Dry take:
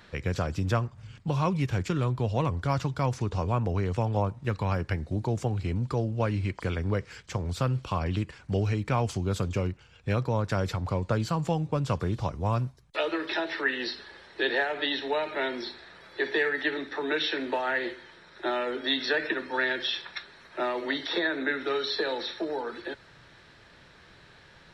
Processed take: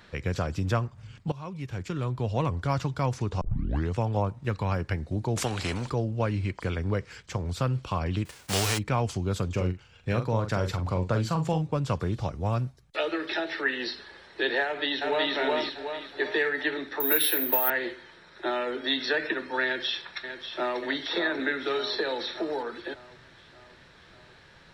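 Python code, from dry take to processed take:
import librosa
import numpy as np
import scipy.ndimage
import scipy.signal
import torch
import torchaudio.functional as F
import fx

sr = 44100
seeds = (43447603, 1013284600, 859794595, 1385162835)

y = fx.spectral_comp(x, sr, ratio=2.0, at=(5.36, 5.9))
y = fx.envelope_flatten(y, sr, power=0.3, at=(8.25, 8.77), fade=0.02)
y = fx.doubler(y, sr, ms=44.0, db=-8, at=(9.56, 11.61), fade=0.02)
y = fx.notch(y, sr, hz=1000.0, q=7.7, at=(12.14, 13.65))
y = fx.echo_throw(y, sr, start_s=14.64, length_s=0.68, ms=370, feedback_pct=45, wet_db=0.0)
y = fx.resample_bad(y, sr, factor=3, down='none', up='zero_stuff', at=(17.0, 17.7))
y = fx.echo_throw(y, sr, start_s=19.64, length_s=1.17, ms=590, feedback_pct=60, wet_db=-9.0)
y = fx.band_squash(y, sr, depth_pct=40, at=(21.39, 22.63))
y = fx.edit(y, sr, fx.fade_in_from(start_s=1.32, length_s=1.08, floor_db=-17.5),
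    fx.tape_start(start_s=3.41, length_s=0.5), tone=tone)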